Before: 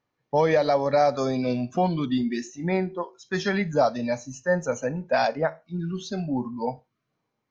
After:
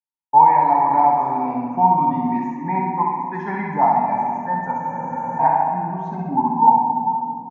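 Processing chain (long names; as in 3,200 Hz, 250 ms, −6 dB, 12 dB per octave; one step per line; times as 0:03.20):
downward expander −42 dBFS
three-way crossover with the lows and the highs turned down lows −21 dB, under 200 Hz, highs −16 dB, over 3,200 Hz
repeating echo 66 ms, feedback 48%, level −4 dB
in parallel at 0 dB: speech leveller 2 s
on the sum: drawn EQ curve 190 Hz 0 dB, 580 Hz −19 dB, 910 Hz +15 dB, 1,300 Hz −14 dB, 2,100 Hz −6 dB, 3,200 Hz −24 dB, 4,700 Hz −24 dB, 8,400 Hz −9 dB
rectangular room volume 120 cubic metres, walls hard, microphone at 0.32 metres
frozen spectrum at 0:04.81, 0.59 s
level −2.5 dB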